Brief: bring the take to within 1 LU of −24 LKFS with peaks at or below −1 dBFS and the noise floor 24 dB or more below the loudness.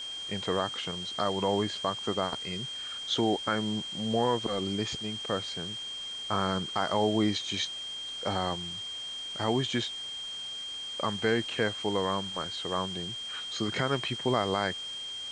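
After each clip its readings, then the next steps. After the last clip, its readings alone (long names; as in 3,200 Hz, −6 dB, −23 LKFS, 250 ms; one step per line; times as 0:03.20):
interfering tone 3,200 Hz; level of the tone −36 dBFS; background noise floor −39 dBFS; target noise floor −55 dBFS; integrated loudness −31.0 LKFS; sample peak −13.0 dBFS; target loudness −24.0 LKFS
→ notch filter 3,200 Hz, Q 30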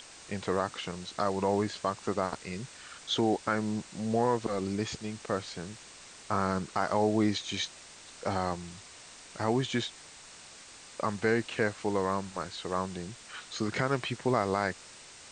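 interfering tone none found; background noise floor −51 dBFS; target noise floor −56 dBFS
→ broadband denoise 6 dB, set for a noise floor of −51 dBFS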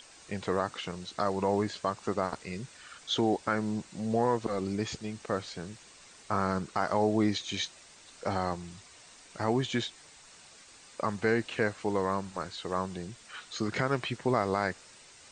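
background noise floor −55 dBFS; target noise floor −56 dBFS
→ broadband denoise 6 dB, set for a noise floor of −55 dBFS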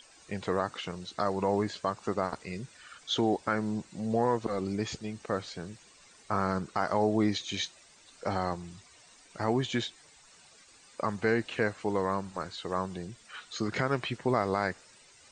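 background noise floor −58 dBFS; integrated loudness −32.0 LKFS; sample peak −13.5 dBFS; target loudness −24.0 LKFS
→ level +8 dB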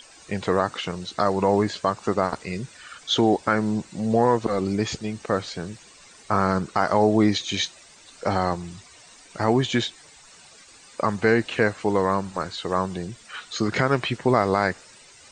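integrated loudness −24.0 LKFS; sample peak −5.5 dBFS; background noise floor −50 dBFS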